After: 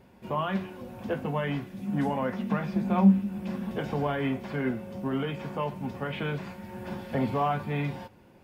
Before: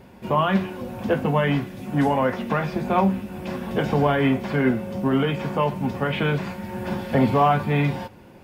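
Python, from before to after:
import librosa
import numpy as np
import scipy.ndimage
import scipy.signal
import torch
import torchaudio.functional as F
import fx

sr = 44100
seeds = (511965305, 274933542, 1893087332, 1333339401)

y = fx.peak_eq(x, sr, hz=200.0, db=14.5, octaves=0.26, at=(1.73, 3.72))
y = F.gain(torch.from_numpy(y), -9.0).numpy()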